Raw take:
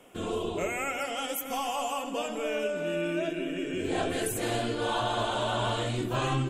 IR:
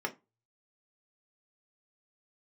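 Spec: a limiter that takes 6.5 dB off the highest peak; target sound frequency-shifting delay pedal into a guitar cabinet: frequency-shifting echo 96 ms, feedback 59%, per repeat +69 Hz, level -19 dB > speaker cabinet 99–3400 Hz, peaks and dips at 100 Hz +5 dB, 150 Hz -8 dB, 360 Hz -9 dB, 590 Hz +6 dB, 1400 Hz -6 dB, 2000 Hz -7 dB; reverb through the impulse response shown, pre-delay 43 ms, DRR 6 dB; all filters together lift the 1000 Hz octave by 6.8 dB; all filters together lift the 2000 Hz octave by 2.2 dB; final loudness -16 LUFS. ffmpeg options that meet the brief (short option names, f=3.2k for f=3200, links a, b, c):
-filter_complex "[0:a]equalizer=f=1k:t=o:g=8,equalizer=f=2k:t=o:g=6.5,alimiter=limit=-19dB:level=0:latency=1,asplit=2[a][b];[1:a]atrim=start_sample=2205,adelay=43[c];[b][c]afir=irnorm=-1:irlink=0,volume=-11dB[d];[a][d]amix=inputs=2:normalize=0,asplit=6[e][f][g][h][i][j];[f]adelay=96,afreqshift=69,volume=-19dB[k];[g]adelay=192,afreqshift=138,volume=-23.6dB[l];[h]adelay=288,afreqshift=207,volume=-28.2dB[m];[i]adelay=384,afreqshift=276,volume=-32.7dB[n];[j]adelay=480,afreqshift=345,volume=-37.3dB[o];[e][k][l][m][n][o]amix=inputs=6:normalize=0,highpass=99,equalizer=f=100:t=q:w=4:g=5,equalizer=f=150:t=q:w=4:g=-8,equalizer=f=360:t=q:w=4:g=-9,equalizer=f=590:t=q:w=4:g=6,equalizer=f=1.4k:t=q:w=4:g=-6,equalizer=f=2k:t=q:w=4:g=-7,lowpass=f=3.4k:w=0.5412,lowpass=f=3.4k:w=1.3066,volume=12dB"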